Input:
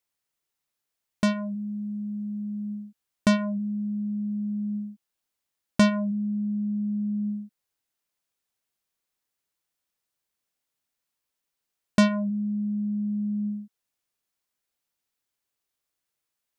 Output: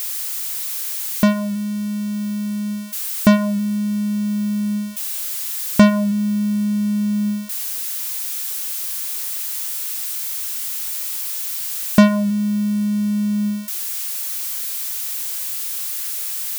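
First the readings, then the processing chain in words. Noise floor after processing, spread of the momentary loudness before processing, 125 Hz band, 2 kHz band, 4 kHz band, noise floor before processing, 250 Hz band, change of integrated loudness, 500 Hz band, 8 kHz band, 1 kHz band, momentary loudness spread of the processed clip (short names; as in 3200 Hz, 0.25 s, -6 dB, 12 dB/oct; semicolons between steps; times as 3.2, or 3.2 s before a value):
-26 dBFS, 11 LU, +8.5 dB, +7.5 dB, +10.5 dB, -84 dBFS, +8.5 dB, +7.5 dB, +8.0 dB, +22.5 dB, +8.0 dB, 8 LU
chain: switching spikes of -23.5 dBFS; high shelf 2800 Hz -7 dB; gain +8.5 dB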